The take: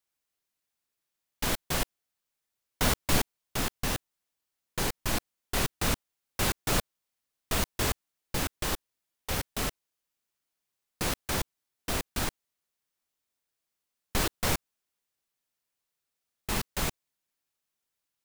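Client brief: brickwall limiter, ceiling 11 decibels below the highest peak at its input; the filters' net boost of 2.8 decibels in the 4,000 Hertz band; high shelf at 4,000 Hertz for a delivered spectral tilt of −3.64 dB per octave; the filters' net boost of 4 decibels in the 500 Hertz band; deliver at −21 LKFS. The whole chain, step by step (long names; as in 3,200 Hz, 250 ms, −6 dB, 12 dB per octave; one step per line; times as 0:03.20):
parametric band 500 Hz +5 dB
high-shelf EQ 4,000 Hz −5 dB
parametric band 4,000 Hz +6.5 dB
level +15 dB
brickwall limiter −7.5 dBFS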